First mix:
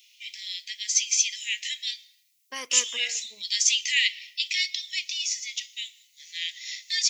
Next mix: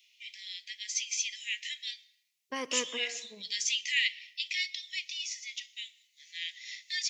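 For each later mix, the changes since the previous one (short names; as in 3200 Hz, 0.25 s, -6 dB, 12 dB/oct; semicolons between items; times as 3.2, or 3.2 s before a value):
second voice: send on; master: add tilt -4 dB/oct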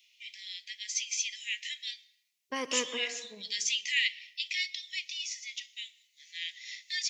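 second voice: send +7.0 dB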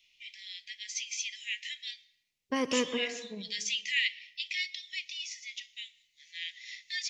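first voice: add high shelf 6500 Hz -9.5 dB; master: remove HPF 690 Hz 6 dB/oct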